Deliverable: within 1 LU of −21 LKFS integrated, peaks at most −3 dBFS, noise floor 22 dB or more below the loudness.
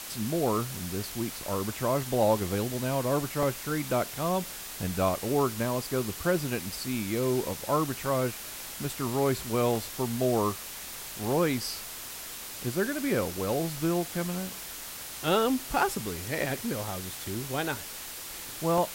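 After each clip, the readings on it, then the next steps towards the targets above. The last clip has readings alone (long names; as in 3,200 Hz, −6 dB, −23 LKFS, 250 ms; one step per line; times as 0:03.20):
background noise floor −41 dBFS; target noise floor −52 dBFS; integrated loudness −30.0 LKFS; sample peak −12.5 dBFS; target loudness −21.0 LKFS
→ broadband denoise 11 dB, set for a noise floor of −41 dBFS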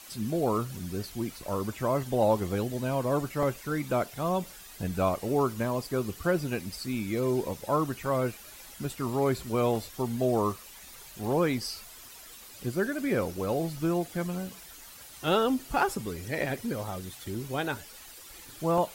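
background noise floor −48 dBFS; target noise floor −52 dBFS
→ broadband denoise 6 dB, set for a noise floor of −48 dBFS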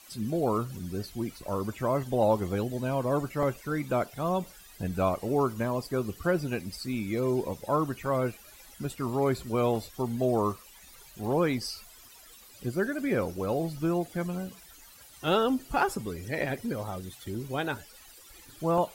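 background noise floor −53 dBFS; integrated loudness −30.5 LKFS; sample peak −13.0 dBFS; target loudness −21.0 LKFS
→ level +9.5 dB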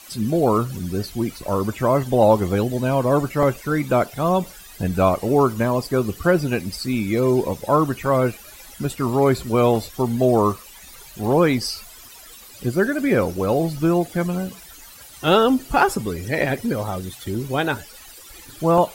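integrated loudness −21.0 LKFS; sample peak −3.5 dBFS; background noise floor −43 dBFS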